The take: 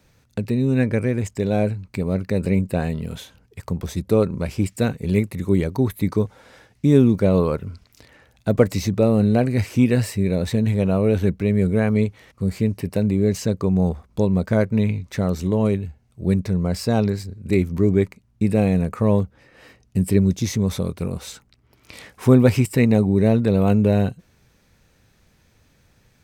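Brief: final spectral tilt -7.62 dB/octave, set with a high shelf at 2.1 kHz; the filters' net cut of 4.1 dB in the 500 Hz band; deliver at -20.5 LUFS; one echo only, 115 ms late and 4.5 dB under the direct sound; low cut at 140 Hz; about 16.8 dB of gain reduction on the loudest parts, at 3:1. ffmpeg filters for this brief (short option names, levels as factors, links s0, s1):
-af "highpass=140,equalizer=f=500:t=o:g=-4.5,highshelf=f=2100:g=-7,acompressor=threshold=0.0178:ratio=3,aecho=1:1:115:0.596,volume=5.31"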